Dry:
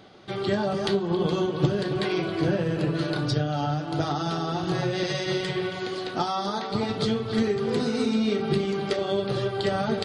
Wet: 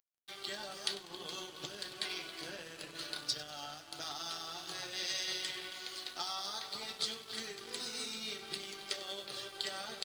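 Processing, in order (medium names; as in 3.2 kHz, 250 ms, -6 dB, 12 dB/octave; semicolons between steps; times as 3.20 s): differentiator; on a send: frequency-shifting echo 97 ms, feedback 48%, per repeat -53 Hz, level -14 dB; on the sum: crossover distortion -55.5 dBFS; trim +3 dB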